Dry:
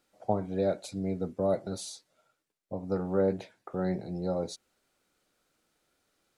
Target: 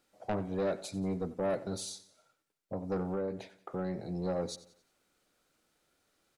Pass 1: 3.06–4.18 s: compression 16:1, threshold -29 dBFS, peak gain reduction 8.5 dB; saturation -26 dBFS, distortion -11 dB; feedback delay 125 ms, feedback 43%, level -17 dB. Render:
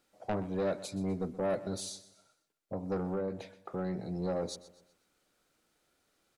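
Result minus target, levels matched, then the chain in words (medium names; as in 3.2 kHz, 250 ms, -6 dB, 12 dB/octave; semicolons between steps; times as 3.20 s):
echo 35 ms late
3.06–4.18 s: compression 16:1, threshold -29 dBFS, peak gain reduction 8.5 dB; saturation -26 dBFS, distortion -11 dB; feedback delay 90 ms, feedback 43%, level -17 dB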